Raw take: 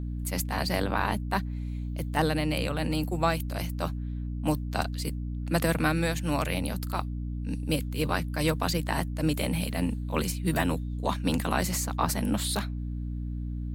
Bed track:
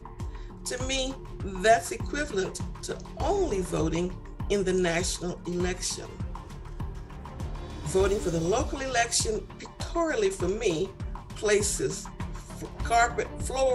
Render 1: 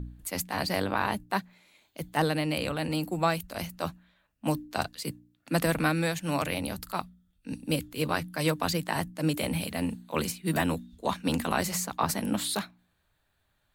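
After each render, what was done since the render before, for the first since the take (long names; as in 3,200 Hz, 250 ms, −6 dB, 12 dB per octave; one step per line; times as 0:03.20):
hum removal 60 Hz, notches 5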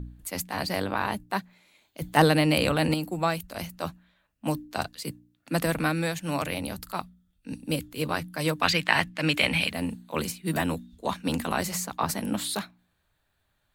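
0:02.02–0:02.94: clip gain +7 dB
0:08.62–0:09.71: drawn EQ curve 380 Hz 0 dB, 920 Hz +5 dB, 2,400 Hz +15 dB, 3,800 Hz +9 dB, 13,000 Hz −6 dB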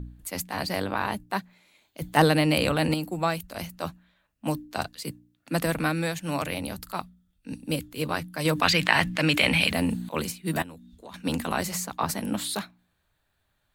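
0:08.45–0:10.09: envelope flattener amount 50%
0:10.62–0:11.14: downward compressor 3 to 1, threshold −45 dBFS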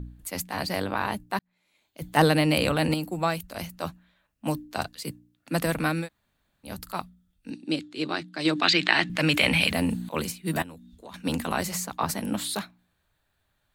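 0:01.39–0:02.25: fade in
0:06.04–0:06.68: fill with room tone, crossfade 0.10 s
0:07.50–0:09.10: loudspeaker in its box 230–7,100 Hz, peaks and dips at 340 Hz +9 dB, 510 Hz −8 dB, 990 Hz −6 dB, 3,900 Hz +6 dB, 6,000 Hz −4 dB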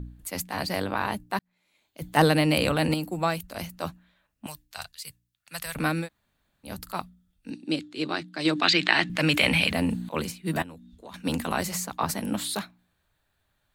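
0:04.46–0:05.76: guitar amp tone stack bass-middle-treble 10-0-10
0:09.60–0:11.07: high-shelf EQ 6,800 Hz −6 dB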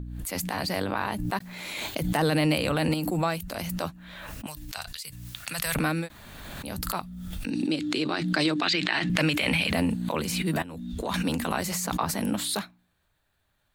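brickwall limiter −15.5 dBFS, peak gain reduction 11 dB
background raised ahead of every attack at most 26 dB per second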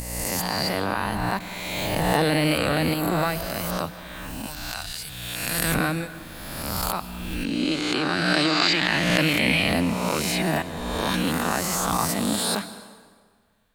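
peak hold with a rise ahead of every peak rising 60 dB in 1.39 s
dense smooth reverb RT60 1.7 s, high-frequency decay 0.75×, pre-delay 115 ms, DRR 14 dB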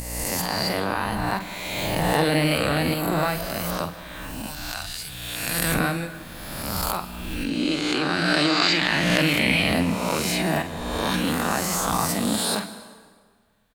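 double-tracking delay 47 ms −9.5 dB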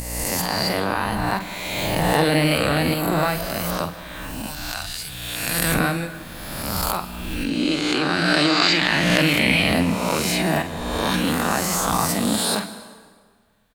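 level +2.5 dB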